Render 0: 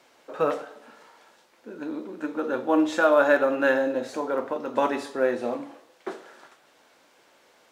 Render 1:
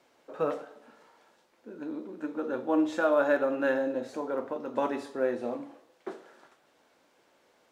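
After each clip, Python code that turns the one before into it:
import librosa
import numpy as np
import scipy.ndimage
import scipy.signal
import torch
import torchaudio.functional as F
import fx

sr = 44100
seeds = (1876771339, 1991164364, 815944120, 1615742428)

y = fx.tilt_shelf(x, sr, db=3.0, hz=740.0)
y = y * 10.0 ** (-6.0 / 20.0)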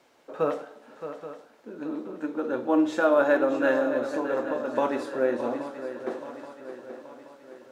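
y = fx.echo_swing(x, sr, ms=827, ratio=3, feedback_pct=48, wet_db=-11.0)
y = y * 10.0 ** (3.5 / 20.0)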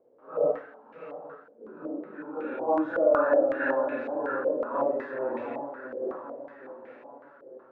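y = fx.phase_scramble(x, sr, seeds[0], window_ms=200)
y = fx.filter_held_lowpass(y, sr, hz=5.4, low_hz=510.0, high_hz=2300.0)
y = y * 10.0 ** (-6.5 / 20.0)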